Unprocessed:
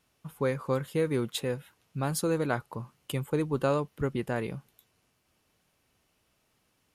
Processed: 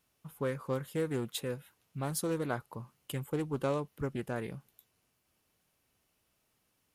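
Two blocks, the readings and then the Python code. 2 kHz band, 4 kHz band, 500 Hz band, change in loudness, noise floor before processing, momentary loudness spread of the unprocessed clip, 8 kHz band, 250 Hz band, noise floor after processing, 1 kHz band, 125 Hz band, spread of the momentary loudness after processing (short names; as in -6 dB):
-6.0 dB, -5.0 dB, -5.5 dB, -5.0 dB, -73 dBFS, 12 LU, -2.5 dB, -5.0 dB, -77 dBFS, -5.5 dB, -5.0 dB, 12 LU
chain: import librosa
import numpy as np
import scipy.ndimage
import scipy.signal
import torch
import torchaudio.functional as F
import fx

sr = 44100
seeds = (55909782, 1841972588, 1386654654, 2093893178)

y = fx.high_shelf(x, sr, hz=11000.0, db=10.0)
y = fx.doppler_dist(y, sr, depth_ms=0.19)
y = y * 10.0 ** (-5.5 / 20.0)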